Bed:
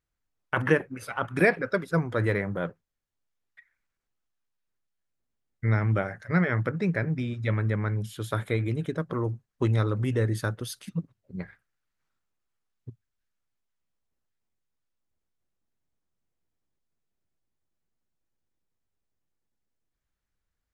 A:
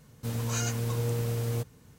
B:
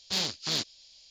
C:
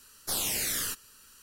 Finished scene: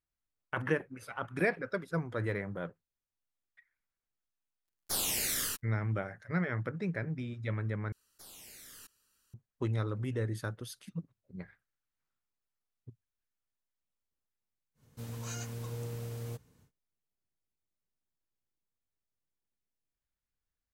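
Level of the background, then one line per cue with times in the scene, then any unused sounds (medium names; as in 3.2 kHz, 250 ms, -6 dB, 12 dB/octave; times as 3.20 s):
bed -8.5 dB
4.62 s: add C -1 dB + crossover distortion -46.5 dBFS
7.92 s: replace with C -8.5 dB + level held to a coarse grid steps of 22 dB
14.74 s: add A -10 dB, fades 0.10 s
not used: B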